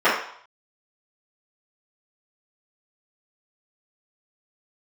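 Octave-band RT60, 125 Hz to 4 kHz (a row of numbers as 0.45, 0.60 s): 0.45, 0.40, 0.55, 0.70, 0.55, 0.60 s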